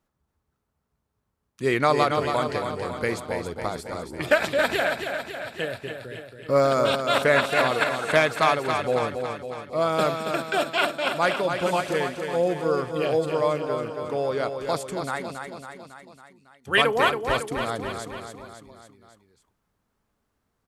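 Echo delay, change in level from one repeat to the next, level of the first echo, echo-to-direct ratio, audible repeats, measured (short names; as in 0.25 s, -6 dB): 0.276 s, -4.5 dB, -6.5 dB, -4.5 dB, 5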